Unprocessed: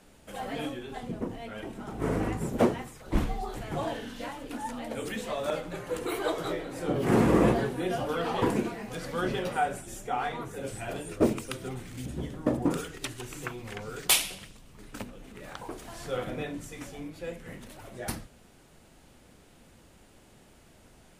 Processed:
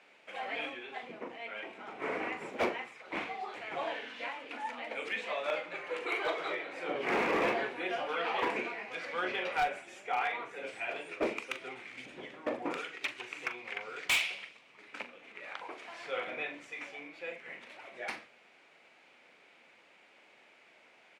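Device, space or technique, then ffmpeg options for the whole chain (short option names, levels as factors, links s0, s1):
megaphone: -filter_complex "[0:a]highpass=530,lowpass=3800,equalizer=f=2300:t=o:w=0.51:g=11.5,asoftclip=type=hard:threshold=0.075,asplit=2[s0][s1];[s1]adelay=41,volume=0.282[s2];[s0][s2]amix=inputs=2:normalize=0,volume=0.794"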